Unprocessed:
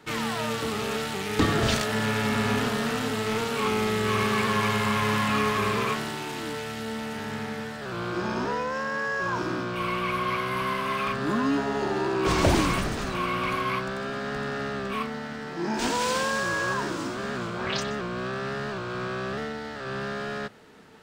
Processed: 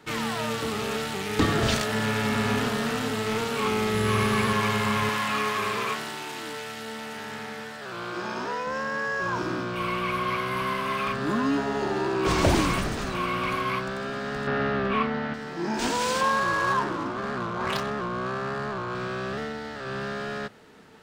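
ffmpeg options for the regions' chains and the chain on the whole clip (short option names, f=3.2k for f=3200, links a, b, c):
-filter_complex "[0:a]asettb=1/sr,asplit=3[a][b][c];[a]atrim=end=3.944[d];[b]atrim=start=3.94:end=4.53,asetpts=PTS-STARTPTS,afade=t=in:d=0.004:c=qsin,afade=t=out:st=0.586:d=0.004:c=qsin,lowshelf=f=110:g=9,aeval=exprs='val(0)+0.00562*sin(2*PI*11000*n/s)':c=same[e];[c]atrim=start=4.526[f];[d][e]acrossfade=d=0.004:c1=hsin:c2=qsin[g];[g][f]acrossfade=d=0.004:c1=qsin:c2=hsin,asettb=1/sr,asplit=3[h][i][j];[h]atrim=end=5.094[k];[i]atrim=start=5.09:end=8.67,asetpts=PTS-STARTPTS,afade=t=in:d=0.004:c=qsin,afade=t=out:st=3.576:d=0.004:c=qsin,highpass=61,lowshelf=f=310:g=-10.5[l];[j]atrim=start=8.666[m];[k][l]acrossfade=d=0.004:c1=hsin:c2=qsin[n];[n][m]acrossfade=d=0.004:c1=qsin:c2=hsin,asettb=1/sr,asplit=3[o][p][q];[o]atrim=end=14.474[r];[p]atrim=start=14.47:end=15.34,asetpts=PTS-STARTPTS,afade=t=in:d=0.004:c=qsin,afade=t=out:st=0.866:d=0.004:c=qsin,lowpass=3k,acontrast=36[s];[q]atrim=start=15.336[t];[r][s]acrossfade=d=0.004:c1=hsin:c2=qsin[u];[u][t]acrossfade=d=0.004:c1=qsin:c2=hsin,asettb=1/sr,asplit=3[v][w][x];[v]atrim=end=16.214[y];[w]atrim=start=16.21:end=18.95,asetpts=PTS-STARTPTS,afade=t=in:d=0.004:c=qsin,afade=t=out:st=2.736:d=0.004:c=qsin,equalizer=f=1k:t=o:w=0.4:g=12.5,bandreject=f=980:w=8.6,adynamicsmooth=sensitivity=4:basefreq=1.2k[z];[x]atrim=start=18.946[aa];[y][z]acrossfade=d=0.004:c1=hsin:c2=qsin[ab];[ab][aa]acrossfade=d=0.004:c1=qsin:c2=hsin"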